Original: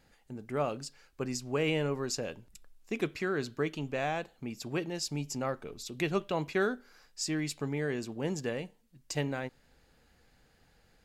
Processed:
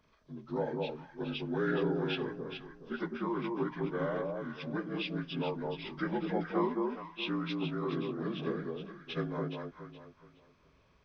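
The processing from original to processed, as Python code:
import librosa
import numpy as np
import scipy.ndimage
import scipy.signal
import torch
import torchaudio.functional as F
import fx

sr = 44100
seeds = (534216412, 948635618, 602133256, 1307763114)

y = fx.partial_stretch(x, sr, pct=78)
y = fx.echo_alternate(y, sr, ms=210, hz=1000.0, feedback_pct=52, wet_db=-2)
y = y * librosa.db_to_amplitude(-1.5)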